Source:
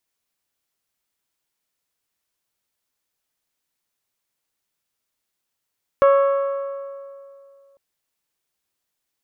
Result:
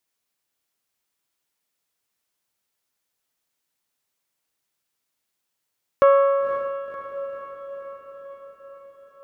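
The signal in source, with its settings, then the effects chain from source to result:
metal hit bell, length 1.75 s, lowest mode 554 Hz, modes 7, decay 2.43 s, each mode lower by 7 dB, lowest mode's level -10 dB
bass shelf 70 Hz -7 dB; echo that smears into a reverb 530 ms, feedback 62%, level -9.5 dB

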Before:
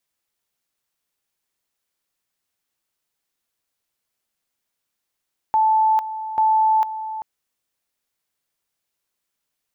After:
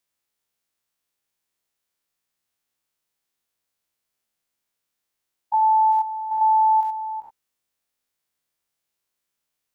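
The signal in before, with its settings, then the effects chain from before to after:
two-level tone 875 Hz -13.5 dBFS, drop 12.5 dB, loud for 0.45 s, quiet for 0.39 s, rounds 2
spectrogram pixelated in time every 100 ms

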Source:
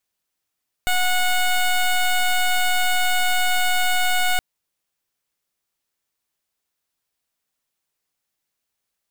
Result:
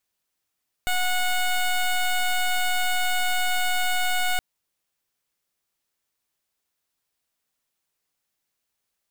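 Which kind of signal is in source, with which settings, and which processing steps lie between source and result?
pulse 731 Hz, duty 13% -18.5 dBFS 3.52 s
peak limiter -22.5 dBFS

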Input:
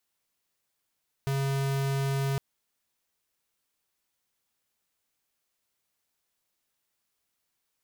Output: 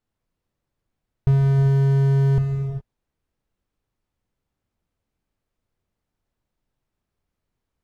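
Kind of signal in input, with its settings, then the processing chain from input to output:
tone square 137 Hz -28 dBFS 1.11 s
tilt EQ -4.5 dB/octave; gated-style reverb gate 440 ms flat, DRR 5 dB

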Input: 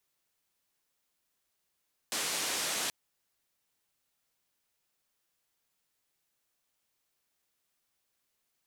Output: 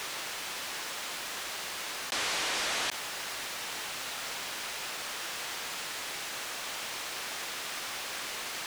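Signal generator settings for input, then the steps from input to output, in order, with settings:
noise band 200–9100 Hz, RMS -33.5 dBFS 0.78 s
treble shelf 11 kHz -8 dB; overdrive pedal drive 15 dB, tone 3.3 kHz, clips at -21.5 dBFS; level flattener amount 100%

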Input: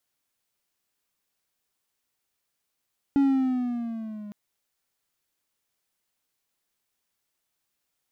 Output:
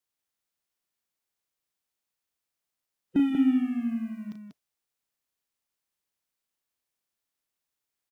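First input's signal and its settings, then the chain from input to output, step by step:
gliding synth tone triangle, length 1.16 s, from 281 Hz, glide -5.5 st, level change -20 dB, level -14.5 dB
coarse spectral quantiser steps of 30 dB; spectral noise reduction 8 dB; loudspeakers at several distances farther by 12 m -7 dB, 65 m -5 dB

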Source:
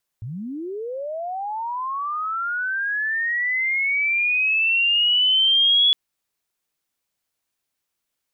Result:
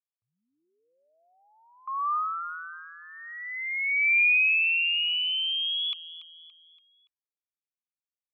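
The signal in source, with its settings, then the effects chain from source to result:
sweep linear 100 Hz -> 3.4 kHz -28.5 dBFS -> -13 dBFS 5.71 s
gate with hold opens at -24 dBFS; two resonant band-passes 1.7 kHz, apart 1 oct; feedback delay 285 ms, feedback 45%, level -15 dB

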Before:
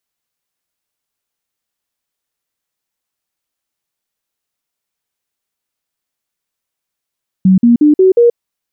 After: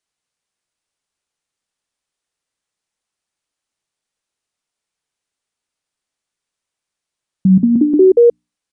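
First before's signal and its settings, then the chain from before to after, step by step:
stepped sine 188 Hz up, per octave 3, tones 5, 0.13 s, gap 0.05 s -4 dBFS
hum notches 60/120/180/240/300 Hz; resampled via 22.05 kHz

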